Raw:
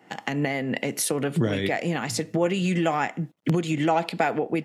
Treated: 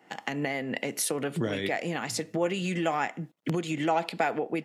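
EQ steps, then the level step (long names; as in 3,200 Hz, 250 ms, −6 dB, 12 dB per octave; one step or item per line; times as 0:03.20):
low-shelf EQ 180 Hz −8.5 dB
−3.0 dB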